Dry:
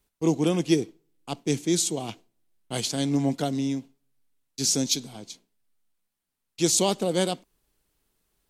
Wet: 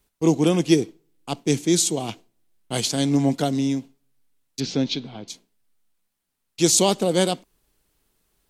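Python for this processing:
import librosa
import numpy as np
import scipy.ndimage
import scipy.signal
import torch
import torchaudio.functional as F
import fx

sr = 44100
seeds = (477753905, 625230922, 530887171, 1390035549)

y = fx.lowpass(x, sr, hz=3700.0, slope=24, at=(4.6, 5.28))
y = F.gain(torch.from_numpy(y), 4.5).numpy()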